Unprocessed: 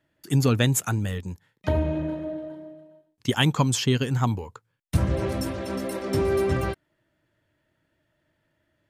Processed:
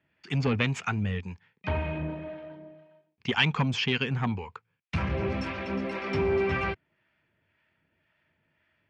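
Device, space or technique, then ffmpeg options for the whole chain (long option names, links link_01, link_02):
guitar amplifier with harmonic tremolo: -filter_complex "[0:a]acrossover=split=690[link_01][link_02];[link_01]aeval=exprs='val(0)*(1-0.5/2+0.5/2*cos(2*PI*1.9*n/s))':channel_layout=same[link_03];[link_02]aeval=exprs='val(0)*(1-0.5/2-0.5/2*cos(2*PI*1.9*n/s))':channel_layout=same[link_04];[link_03][link_04]amix=inputs=2:normalize=0,asoftclip=type=tanh:threshold=-19dB,highpass=76,equalizer=frequency=120:width_type=q:width=4:gain=-8,equalizer=frequency=310:width_type=q:width=4:gain=-10,equalizer=frequency=580:width_type=q:width=4:gain=-8,equalizer=frequency=2400:width_type=q:width=4:gain=9,equalizer=frequency=3900:width_type=q:width=4:gain=-6,lowpass=frequency=4400:width=0.5412,lowpass=frequency=4400:width=1.3066,volume=3.5dB"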